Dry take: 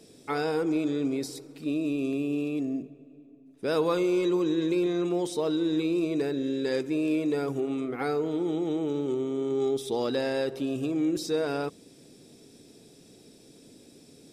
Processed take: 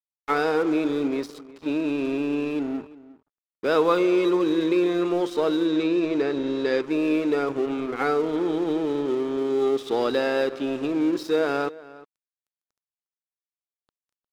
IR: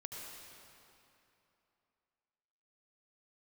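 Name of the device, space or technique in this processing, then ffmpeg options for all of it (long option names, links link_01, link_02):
pocket radio on a weak battery: -filter_complex "[0:a]highpass=260,lowpass=4100,aeval=exprs='sgn(val(0))*max(abs(val(0))-0.00562,0)':channel_layout=same,equalizer=frequency=1300:width_type=o:width=0.42:gain=4.5,asettb=1/sr,asplit=3[link_01][link_02][link_03];[link_01]atrim=end=5.674[link_04];[link_02]atrim=start=5.67:end=6.83,asetpts=PTS-STARTPTS,afade=type=in:duration=0.004:curve=qsin,afade=type=out:start_time=1.156:duration=0.004:curve=qsin,lowpass=6800[link_05];[link_03]atrim=start=6.826[link_06];[link_04][link_05]acrossfade=duration=0.004:curve1=hsin:curve2=qsin[link_07];[link_07][link_06]acrossfade=duration=0.004:curve1=qsin:curve2=hsin,asplit=2[link_08][link_09];[link_09]adelay=355.7,volume=-19dB,highshelf=frequency=4000:gain=-8[link_10];[link_08][link_10]amix=inputs=2:normalize=0,volume=6.5dB"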